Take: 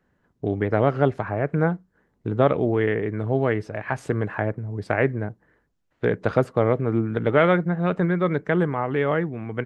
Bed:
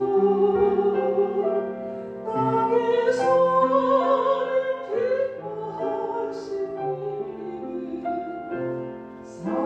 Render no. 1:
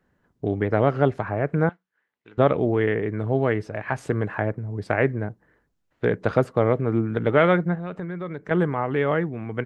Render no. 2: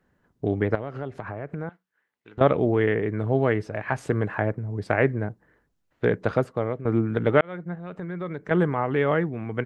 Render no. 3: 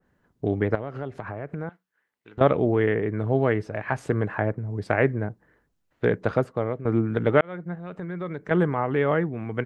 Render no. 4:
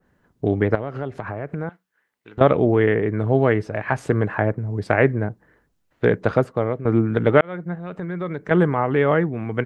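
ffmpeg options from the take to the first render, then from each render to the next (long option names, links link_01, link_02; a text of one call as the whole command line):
ffmpeg -i in.wav -filter_complex "[0:a]asettb=1/sr,asplit=3[link_01][link_02][link_03];[link_01]atrim=end=1.694[link_04];[link_02]atrim=start=1.69:end=2.38,asetpts=PTS-STARTPTS,afade=type=in:duration=0.004:curve=qsin,afade=type=out:start_time=0.686:duration=0.004:curve=qsin,bandpass=frequency=2600:width_type=q:width=1.5[link_05];[link_03]atrim=start=2.376[link_06];[link_04][link_05]acrossfade=duration=0.004:curve1=hsin:curve2=qsin[link_07];[link_07][link_06]acrossfade=duration=0.004:curve1=qsin:curve2=hsin,asettb=1/sr,asplit=3[link_08][link_09][link_10];[link_08]atrim=end=7.754[link_11];[link_09]atrim=start=7.75:end=8.51,asetpts=PTS-STARTPTS,afade=type=in:duration=0.004:curve=qsin,afade=type=out:start_time=0.756:duration=0.004:curve=qsin,acompressor=threshold=-33dB:ratio=2.5:attack=3.2:release=140:knee=1:detection=peak[link_12];[link_10]atrim=start=8.506[link_13];[link_11][link_12]acrossfade=duration=0.004:curve1=hsin:curve2=qsin[link_14];[link_14][link_13]acrossfade=duration=0.004:curve1=qsin:curve2=hsin" out.wav
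ffmpeg -i in.wav -filter_complex "[0:a]asettb=1/sr,asplit=3[link_01][link_02][link_03];[link_01]atrim=end=0.754[link_04];[link_02]atrim=start=0.75:end=2.41,asetpts=PTS-STARTPTS,afade=type=in:duration=0.004:curve=qsin,afade=type=out:start_time=1.656:duration=0.004:curve=qsin,acompressor=threshold=-30dB:ratio=4:attack=3.2:release=140:knee=1:detection=peak[link_05];[link_03]atrim=start=2.406[link_06];[link_04][link_05]acrossfade=duration=0.004:curve1=hsin:curve2=qsin[link_07];[link_07][link_06]acrossfade=duration=0.004:curve1=qsin:curve2=hsin,asplit=3[link_08][link_09][link_10];[link_08]atrim=end=6.85,asetpts=PTS-STARTPTS,afade=type=out:start_time=6.1:duration=0.75:silence=0.251189[link_11];[link_09]atrim=start=6.85:end=7.41,asetpts=PTS-STARTPTS,afade=type=in:duration=0.004:curve=hsin:silence=0.251189,afade=type=out:start_time=0.556:duration=0.004:curve=hsin[link_12];[link_10]atrim=start=7.41,asetpts=PTS-STARTPTS,afade=type=in:duration=0.8[link_13];[link_11][link_12][link_13]concat=n=3:v=0:a=1" out.wav
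ffmpeg -i in.wav -af "adynamicequalizer=threshold=0.0141:dfrequency=2100:dqfactor=0.7:tfrequency=2100:tqfactor=0.7:attack=5:release=100:ratio=0.375:range=2:mode=cutabove:tftype=highshelf" out.wav
ffmpeg -i in.wav -af "volume=4.5dB,alimiter=limit=-2dB:level=0:latency=1" out.wav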